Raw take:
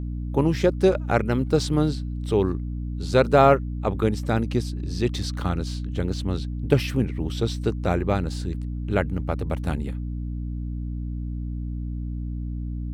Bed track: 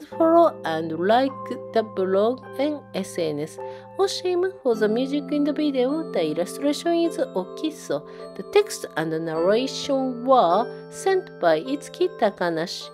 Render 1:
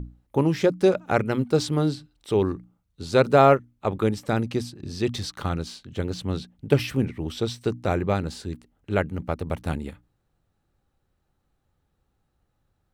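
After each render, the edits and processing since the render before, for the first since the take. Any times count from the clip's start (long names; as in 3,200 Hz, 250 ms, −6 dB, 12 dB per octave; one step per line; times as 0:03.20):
mains-hum notches 60/120/180/240/300 Hz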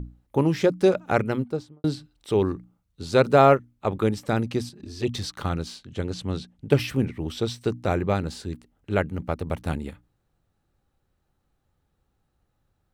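0:01.20–0:01.84: fade out and dull
0:04.69–0:05.15: flanger swept by the level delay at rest 6.4 ms, full sweep at −19 dBFS
0:05.82–0:06.71: Chebyshev low-pass filter 9,400 Hz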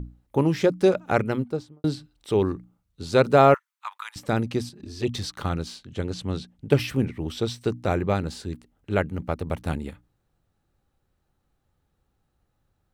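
0:03.54–0:04.16: Chebyshev high-pass filter 950 Hz, order 5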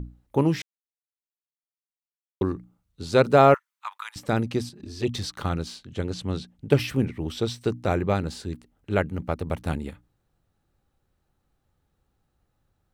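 0:00.62–0:02.41: silence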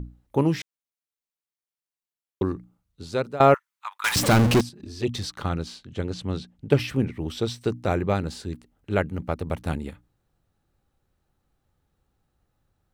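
0:02.50–0:03.40: fade out equal-power, to −20 dB
0:04.04–0:04.61: power curve on the samples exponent 0.35
0:05.34–0:07.10: high-shelf EQ 8,500 Hz −6 dB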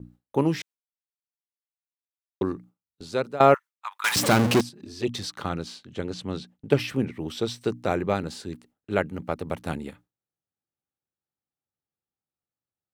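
Bessel high-pass filter 160 Hz, order 2
noise gate with hold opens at −40 dBFS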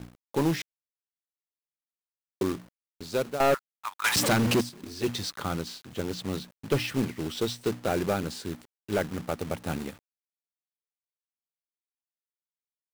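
log-companded quantiser 4 bits
soft clipping −17 dBFS, distortion −8 dB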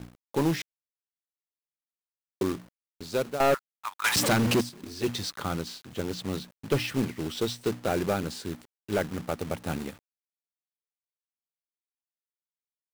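no processing that can be heard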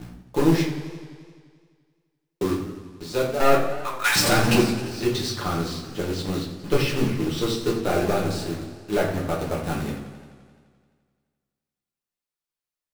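rectangular room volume 49 cubic metres, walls mixed, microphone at 0.89 metres
feedback echo with a swinging delay time 86 ms, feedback 73%, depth 124 cents, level −13 dB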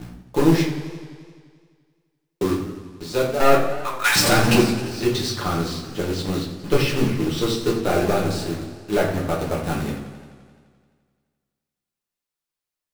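level +2.5 dB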